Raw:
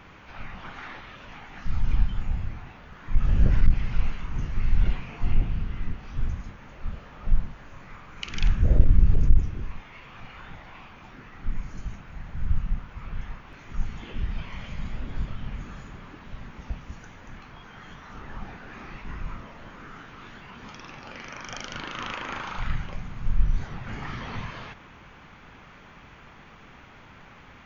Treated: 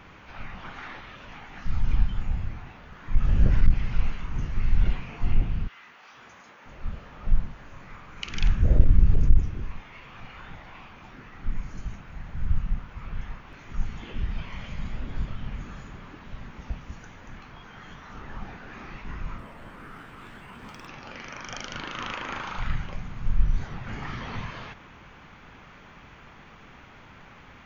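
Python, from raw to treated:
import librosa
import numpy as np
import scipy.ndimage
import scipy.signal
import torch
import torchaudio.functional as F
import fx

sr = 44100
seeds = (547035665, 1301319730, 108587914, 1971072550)

y = fx.highpass(x, sr, hz=fx.line((5.67, 1100.0), (6.65, 390.0)), slope=12, at=(5.67, 6.65), fade=0.02)
y = fx.resample_linear(y, sr, factor=4, at=(19.38, 20.87))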